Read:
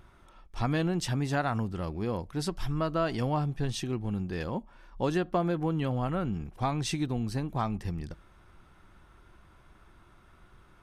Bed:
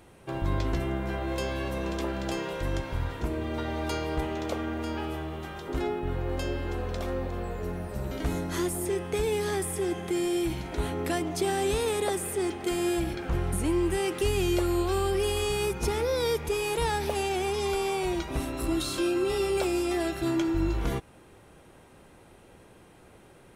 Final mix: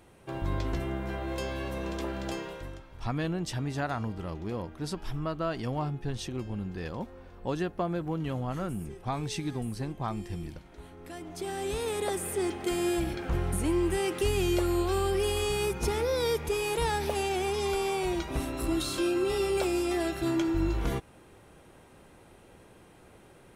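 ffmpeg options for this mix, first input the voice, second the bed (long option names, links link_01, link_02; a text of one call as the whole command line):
ffmpeg -i stem1.wav -i stem2.wav -filter_complex "[0:a]adelay=2450,volume=-3dB[link_01];[1:a]volume=14dB,afade=type=out:start_time=2.3:duration=0.51:silence=0.177828,afade=type=in:start_time=11:duration=1.36:silence=0.141254[link_02];[link_01][link_02]amix=inputs=2:normalize=0" out.wav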